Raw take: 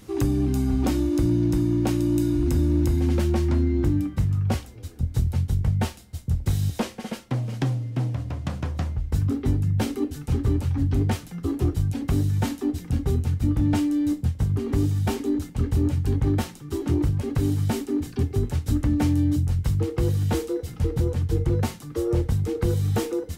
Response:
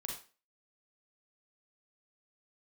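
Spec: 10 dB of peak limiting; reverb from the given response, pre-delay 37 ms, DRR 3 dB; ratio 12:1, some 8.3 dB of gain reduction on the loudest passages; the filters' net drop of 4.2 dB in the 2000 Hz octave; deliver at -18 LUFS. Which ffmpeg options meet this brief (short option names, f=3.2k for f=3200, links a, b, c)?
-filter_complex "[0:a]equalizer=f=2k:t=o:g=-5.5,acompressor=threshold=-26dB:ratio=12,alimiter=level_in=3dB:limit=-24dB:level=0:latency=1,volume=-3dB,asplit=2[a][b];[1:a]atrim=start_sample=2205,adelay=37[c];[b][c]afir=irnorm=-1:irlink=0,volume=-2dB[d];[a][d]amix=inputs=2:normalize=0,volume=15.5dB"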